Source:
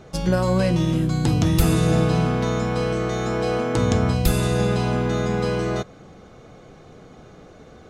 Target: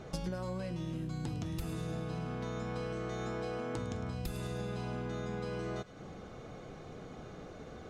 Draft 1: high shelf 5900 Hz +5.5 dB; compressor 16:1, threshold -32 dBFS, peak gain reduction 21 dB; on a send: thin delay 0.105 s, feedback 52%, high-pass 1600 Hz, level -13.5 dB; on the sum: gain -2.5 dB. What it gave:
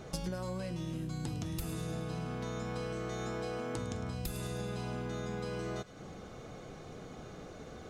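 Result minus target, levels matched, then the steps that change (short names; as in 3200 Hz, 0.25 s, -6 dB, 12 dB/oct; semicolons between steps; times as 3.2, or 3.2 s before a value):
8000 Hz band +5.0 dB
change: high shelf 5900 Hz -3.5 dB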